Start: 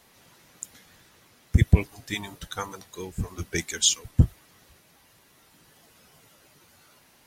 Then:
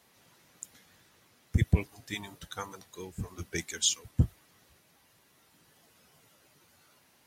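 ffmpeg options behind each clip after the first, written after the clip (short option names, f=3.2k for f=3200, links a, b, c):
-af "highpass=59,volume=-6dB"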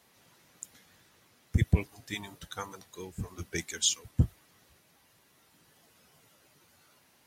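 -af anull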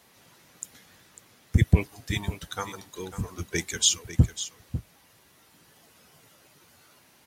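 -af "aecho=1:1:548:0.237,volume=5.5dB"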